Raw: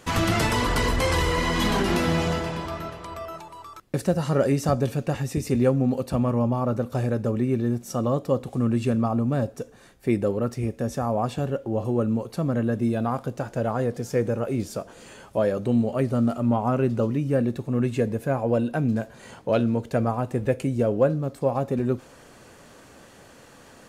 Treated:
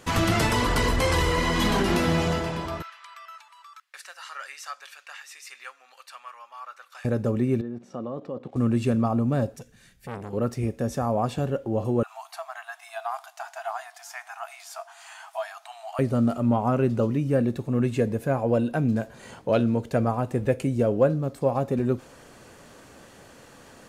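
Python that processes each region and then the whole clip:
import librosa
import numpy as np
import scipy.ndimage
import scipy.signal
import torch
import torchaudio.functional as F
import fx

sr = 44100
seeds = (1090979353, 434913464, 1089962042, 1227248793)

y = fx.chain(x, sr, fx.highpass(hz=1300.0, slope=24),
    fx.high_shelf(hz=6900.0, db=-11.5), at=(2.82, 7.05))
y = fx.chain(y, sr, fx.low_shelf(hz=410.0, db=4.5),
    fx.level_steps(step_db=15),
    fx.bandpass_edges(low_hz=210.0, high_hz=3100.0), at=(7.61, 8.56))
y = fx.chain(y, sr, fx.band_shelf(hz=590.0, db=-12.5, octaves=2.5),
    fx.transformer_sat(knee_hz=1300.0), at=(9.56, 10.33))
y = fx.chain(y, sr, fx.brickwall_highpass(low_hz=640.0),
    fx.band_squash(depth_pct=40), at=(12.03, 15.99))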